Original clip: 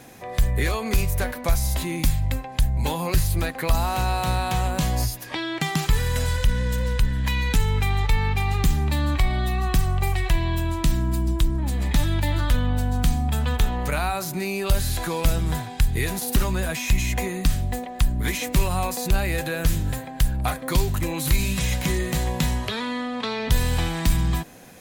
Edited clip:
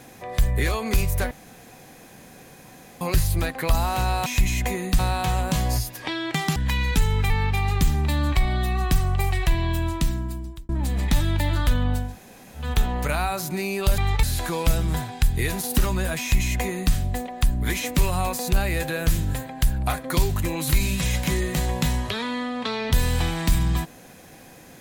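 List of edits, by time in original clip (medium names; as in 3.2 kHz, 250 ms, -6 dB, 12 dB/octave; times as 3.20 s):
1.31–3.01 s: room tone
5.83–7.14 s: delete
7.88–8.13 s: move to 14.81 s
10.68–11.52 s: fade out
12.88–13.48 s: room tone, crossfade 0.24 s
16.78–17.51 s: copy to 4.26 s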